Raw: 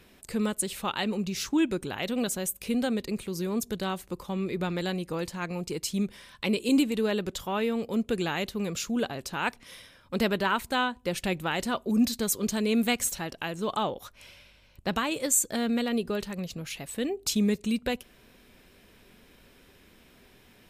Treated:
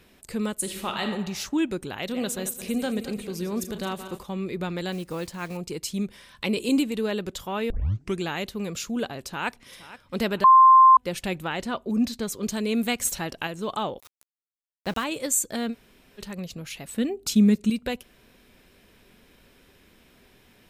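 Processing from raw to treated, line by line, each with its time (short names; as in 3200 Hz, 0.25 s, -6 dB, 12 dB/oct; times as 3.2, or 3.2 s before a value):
0.56–1.04 reverb throw, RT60 1.1 s, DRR 3.5 dB
1.99–4.23 regenerating reverse delay 0.11 s, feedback 63%, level -10 dB
4.92–5.58 block floating point 5-bit
6.3–6.76 transient shaper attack +2 dB, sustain +6 dB
7.7 tape start 0.50 s
9.19–9.76 echo throw 0.47 s, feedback 45%, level -16 dB
10.44–10.97 bleep 1050 Hz -9.5 dBFS
11.47–12.43 high shelf 6800 Hz -10.5 dB
13.05–13.47 gain +3.5 dB
14–15.04 sample gate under -37.5 dBFS
15.72–16.2 room tone, crossfade 0.06 s
16.85–17.7 small resonant body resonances 220/1400 Hz, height 9 dB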